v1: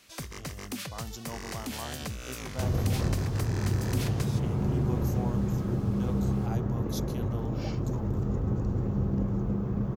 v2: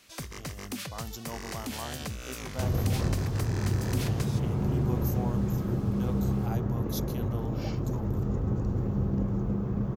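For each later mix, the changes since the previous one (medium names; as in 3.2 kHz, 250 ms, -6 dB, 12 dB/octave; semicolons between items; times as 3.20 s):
speech: remove Chebyshev band-pass 100–9300 Hz, order 2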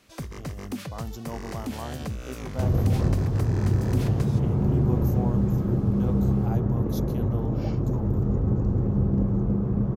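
master: add tilt shelf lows +5.5 dB, about 1.3 kHz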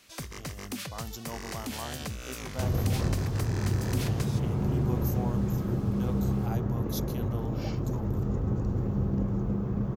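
master: add tilt shelf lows -5.5 dB, about 1.3 kHz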